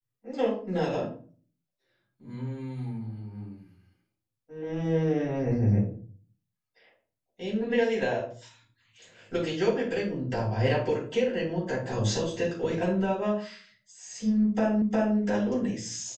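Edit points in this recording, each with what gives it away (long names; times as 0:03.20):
0:14.82: the same again, the last 0.36 s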